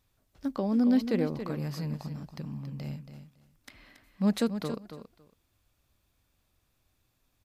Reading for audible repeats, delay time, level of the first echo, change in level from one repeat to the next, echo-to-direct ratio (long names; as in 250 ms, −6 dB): 2, 278 ms, −10.0 dB, −16.0 dB, −10.0 dB